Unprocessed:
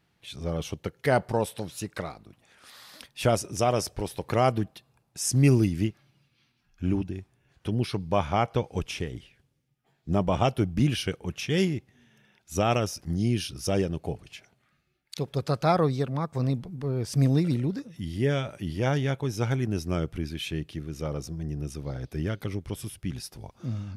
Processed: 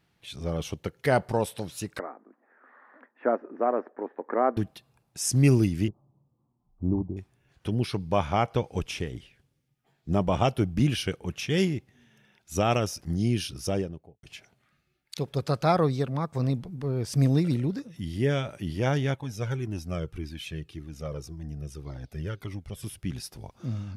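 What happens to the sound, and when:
0:01.99–0:04.57: Chebyshev band-pass filter 240–1,800 Hz, order 4
0:05.88–0:07.17: Butterworth low-pass 1,100 Hz 72 dB per octave
0:13.53–0:14.23: fade out and dull
0:19.14–0:22.83: flanger whose copies keep moving one way falling 1.8 Hz

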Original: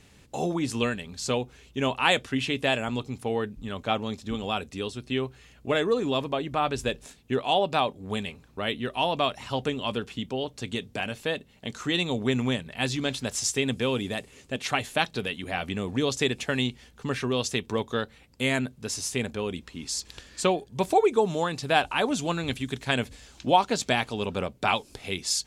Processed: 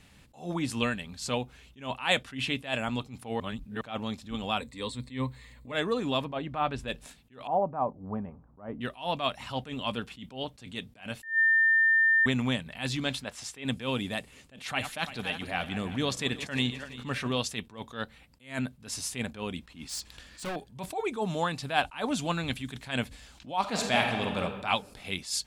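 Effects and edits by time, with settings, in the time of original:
0:03.40–0:03.81: reverse
0:04.59–0:05.72: EQ curve with evenly spaced ripples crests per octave 1, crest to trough 12 dB
0:06.25–0:06.88: low-pass filter 2,300 Hz 6 dB per octave
0:07.47–0:08.81: inverse Chebyshev low-pass filter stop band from 6,300 Hz, stop band 80 dB
0:11.23–0:12.26: beep over 1,800 Hz −19 dBFS
0:13.24–0:13.65: bass and treble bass −7 dB, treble −11 dB
0:14.63–0:17.38: feedback delay that plays each chunk backwards 170 ms, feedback 61%, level −13 dB
0:19.72–0:20.56: gain into a clipping stage and back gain 29 dB
0:23.60–0:24.40: thrown reverb, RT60 1.4 s, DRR 2 dB
whole clip: graphic EQ with 15 bands 100 Hz −3 dB, 400 Hz −8 dB, 6,300 Hz −5 dB; level that may rise only so fast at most 170 dB per second

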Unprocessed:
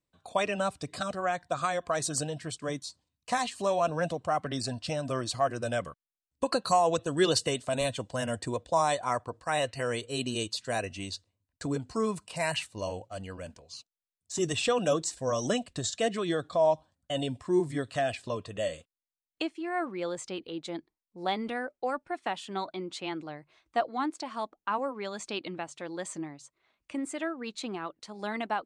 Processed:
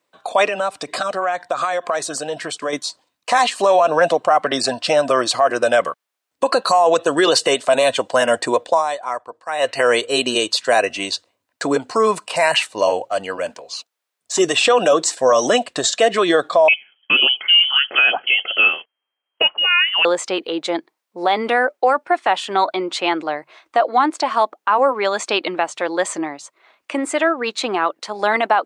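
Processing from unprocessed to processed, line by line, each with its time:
0:00.45–0:02.73: downward compressor, threshold −36 dBFS
0:08.68–0:09.72: duck −14.5 dB, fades 0.14 s
0:16.68–0:20.05: voice inversion scrambler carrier 3,200 Hz
whole clip: high-pass filter 510 Hz 12 dB per octave; high-shelf EQ 3,200 Hz −9.5 dB; boost into a limiter +26 dB; level −4.5 dB

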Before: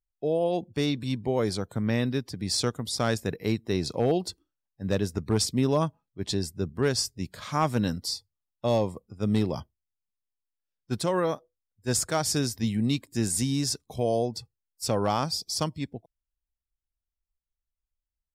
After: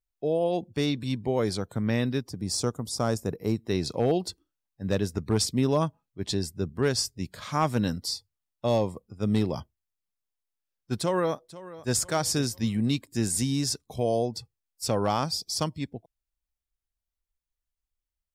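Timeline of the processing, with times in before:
0:02.22–0:03.58: flat-topped bell 2,600 Hz −9.5 dB
0:10.99–0:11.95: delay throw 490 ms, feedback 40%, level −17 dB

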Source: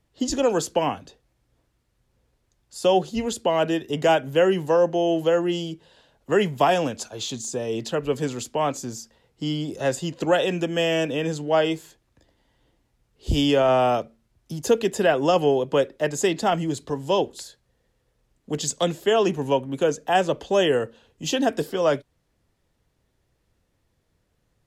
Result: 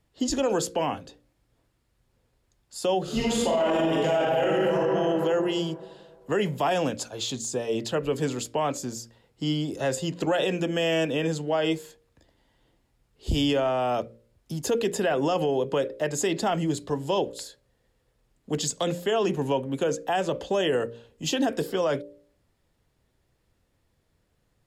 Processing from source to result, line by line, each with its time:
0:03.02–0:04.74: thrown reverb, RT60 2 s, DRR −8 dB
whole clip: notch filter 6,000 Hz, Q 18; hum removal 58.36 Hz, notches 10; brickwall limiter −16.5 dBFS

